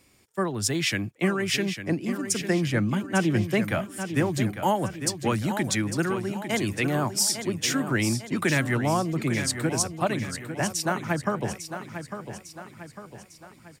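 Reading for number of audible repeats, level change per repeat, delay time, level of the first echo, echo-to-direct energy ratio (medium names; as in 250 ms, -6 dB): 5, -6.5 dB, 851 ms, -9.5 dB, -8.5 dB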